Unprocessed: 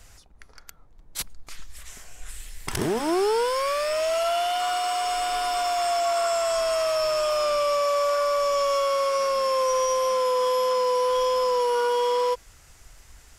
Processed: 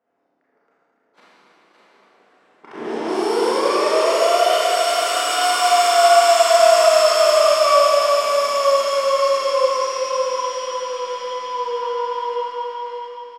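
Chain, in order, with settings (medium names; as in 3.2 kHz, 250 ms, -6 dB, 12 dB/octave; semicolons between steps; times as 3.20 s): Doppler pass-by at 5.93 s, 5 m/s, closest 5.5 m; high-pass 250 Hz 24 dB/octave; in parallel at +1.5 dB: peak limiter -23.5 dBFS, peak gain reduction 8.5 dB; on the sum: level-controlled noise filter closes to 780 Hz, open at -20 dBFS; on a send: delay 565 ms -4.5 dB; on the sum: Schroeder reverb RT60 3.6 s, combs from 27 ms, DRR -10 dB; trim -4 dB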